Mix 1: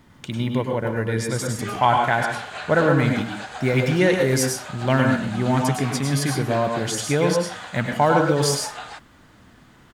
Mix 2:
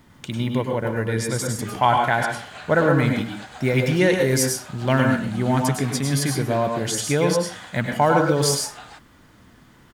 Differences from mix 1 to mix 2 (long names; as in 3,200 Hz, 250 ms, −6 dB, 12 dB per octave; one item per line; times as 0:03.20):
background −6.0 dB
master: add high-shelf EQ 7,900 Hz +4.5 dB